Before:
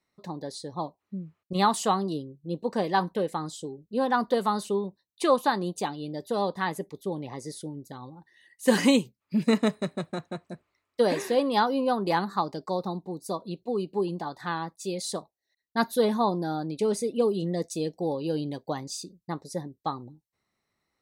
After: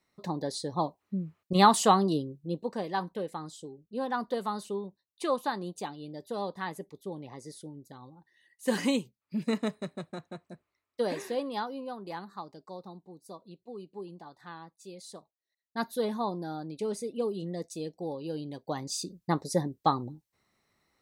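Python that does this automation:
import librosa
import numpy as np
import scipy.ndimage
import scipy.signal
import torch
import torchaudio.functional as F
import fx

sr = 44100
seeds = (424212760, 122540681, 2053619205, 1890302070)

y = fx.gain(x, sr, db=fx.line((2.33, 3.0), (2.78, -7.0), (11.27, -7.0), (11.92, -14.0), (15.14, -14.0), (15.82, -7.0), (18.48, -7.0), (19.16, 5.5)))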